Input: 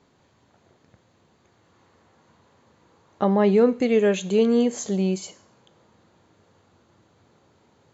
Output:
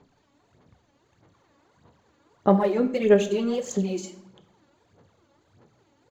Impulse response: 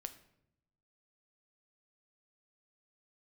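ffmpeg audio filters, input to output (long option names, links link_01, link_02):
-filter_complex "[0:a]atempo=1.3,aphaser=in_gain=1:out_gain=1:delay=3.6:decay=0.7:speed=1.6:type=sinusoidal[link_01];[1:a]atrim=start_sample=2205[link_02];[link_01][link_02]afir=irnorm=-1:irlink=0,volume=-2dB"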